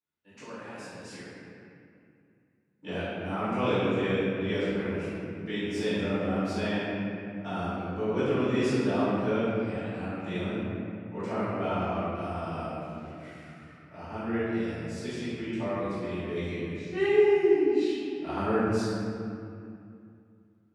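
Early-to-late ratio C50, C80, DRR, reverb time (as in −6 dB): −4.5 dB, −2.5 dB, −15.5 dB, 2.5 s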